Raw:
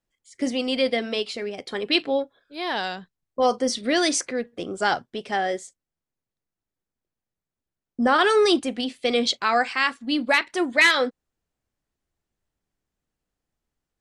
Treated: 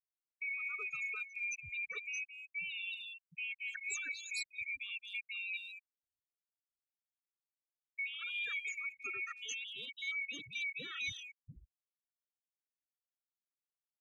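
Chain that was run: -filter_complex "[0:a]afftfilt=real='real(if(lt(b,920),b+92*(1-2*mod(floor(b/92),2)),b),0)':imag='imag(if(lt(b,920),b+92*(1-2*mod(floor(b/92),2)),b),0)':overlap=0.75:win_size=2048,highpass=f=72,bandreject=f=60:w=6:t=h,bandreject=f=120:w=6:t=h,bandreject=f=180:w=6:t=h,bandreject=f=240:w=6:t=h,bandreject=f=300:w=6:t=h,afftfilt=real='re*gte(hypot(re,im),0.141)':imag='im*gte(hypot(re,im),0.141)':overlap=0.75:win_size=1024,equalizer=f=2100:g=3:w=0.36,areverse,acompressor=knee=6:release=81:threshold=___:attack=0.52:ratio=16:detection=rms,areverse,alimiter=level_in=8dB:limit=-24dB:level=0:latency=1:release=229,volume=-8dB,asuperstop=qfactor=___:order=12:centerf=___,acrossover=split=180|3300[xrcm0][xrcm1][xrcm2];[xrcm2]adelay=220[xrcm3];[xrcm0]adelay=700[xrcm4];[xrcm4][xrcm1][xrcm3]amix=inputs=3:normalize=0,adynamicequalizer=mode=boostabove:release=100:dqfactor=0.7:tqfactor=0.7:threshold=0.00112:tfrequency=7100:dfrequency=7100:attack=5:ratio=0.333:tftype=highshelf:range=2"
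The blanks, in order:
-25dB, 1.1, 790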